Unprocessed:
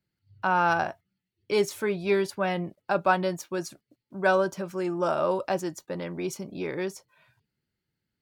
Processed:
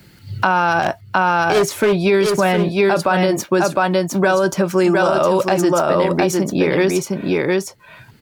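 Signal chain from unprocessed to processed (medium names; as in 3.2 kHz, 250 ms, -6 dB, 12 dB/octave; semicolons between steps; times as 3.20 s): 0.82–1.93 s: overload inside the chain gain 26 dB; delay 709 ms -5 dB; loudness maximiser +21 dB; three bands compressed up and down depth 70%; trim -6 dB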